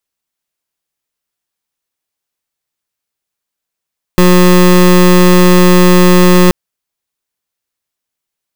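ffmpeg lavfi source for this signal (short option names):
-f lavfi -i "aevalsrc='0.562*(2*lt(mod(180*t,1),0.24)-1)':d=2.33:s=44100"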